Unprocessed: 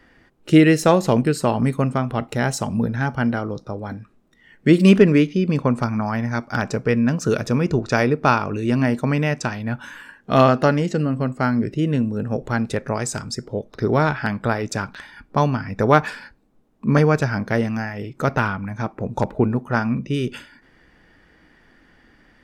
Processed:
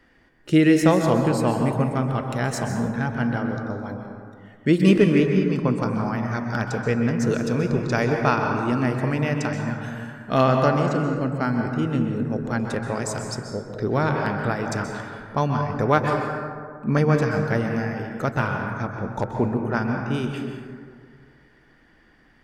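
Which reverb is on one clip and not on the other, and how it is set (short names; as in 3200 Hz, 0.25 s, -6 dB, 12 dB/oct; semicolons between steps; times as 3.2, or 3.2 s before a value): plate-style reverb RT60 2 s, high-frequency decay 0.35×, pre-delay 0.115 s, DRR 3 dB; gain -4.5 dB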